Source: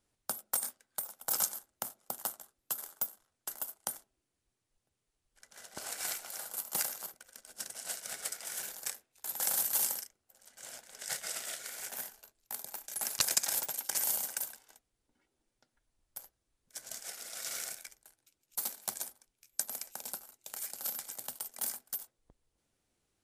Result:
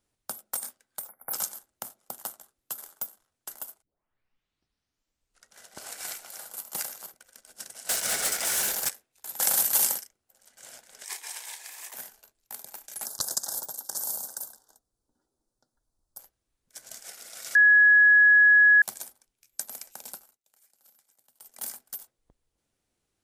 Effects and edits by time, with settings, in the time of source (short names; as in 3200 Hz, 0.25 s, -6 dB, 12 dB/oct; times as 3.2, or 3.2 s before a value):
1.08–1.33 spectral delete 2300–10000 Hz
3.82 tape start 1.73 s
7.89–8.89 sample leveller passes 5
9.39–9.98 gain +7.5 dB
11.04–11.94 frequency shift +260 Hz
13.05–16.19 Butterworth band-stop 2400 Hz, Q 0.87
17.55–18.82 bleep 1680 Hz -13.5 dBFS
20.12–21.63 dip -23.5 dB, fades 0.29 s